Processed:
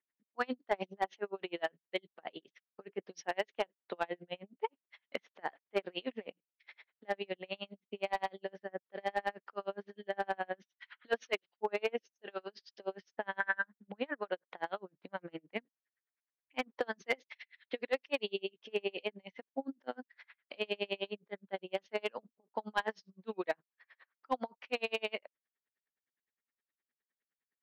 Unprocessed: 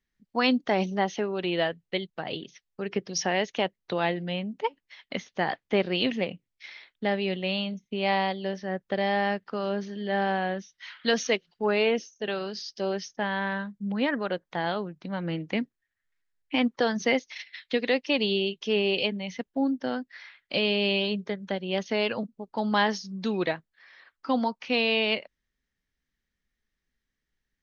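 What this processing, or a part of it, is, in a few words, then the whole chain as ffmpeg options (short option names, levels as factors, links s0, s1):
helicopter radio: -filter_complex "[0:a]highpass=390,lowpass=2500,aeval=exprs='val(0)*pow(10,-37*(0.5-0.5*cos(2*PI*9.7*n/s))/20)':c=same,asoftclip=type=hard:threshold=0.1,asettb=1/sr,asplit=3[s0][s1][s2];[s0]atrim=end=13.404[s3];[s1]atrim=start=13.4:end=13.88,asetpts=PTS-STARTPTS,afade=t=in:d=0.004:c=qsin,afade=t=out:st=0.476:d=0.004:c=qsin,equalizer=f=160:t=o:w=0.67:g=-10,equalizer=f=400:t=o:w=0.67:g=-4,equalizer=f=1600:t=o:w=0.67:g=11[s4];[s2]atrim=start=13.876[s5];[s3][s4]acrossfade=d=0.004:c1=hsin:c2=qsin[s6];[s6][s5]acrossfade=d=0.004:c1=qsin:c2=hsin,volume=0.841"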